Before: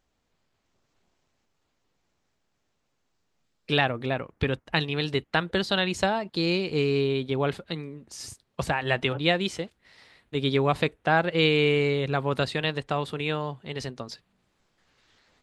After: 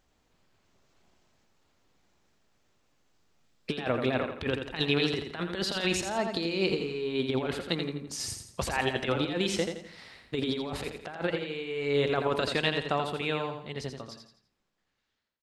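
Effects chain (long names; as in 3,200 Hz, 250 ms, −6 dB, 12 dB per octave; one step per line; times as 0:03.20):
fade-out on the ending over 4.33 s
dynamic equaliser 140 Hz, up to −7 dB, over −43 dBFS, Q 1.7
compressor whose output falls as the input rises −29 dBFS, ratio −0.5
repeating echo 84 ms, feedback 38%, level −6.5 dB
on a send at −18.5 dB: convolution reverb RT60 0.45 s, pre-delay 76 ms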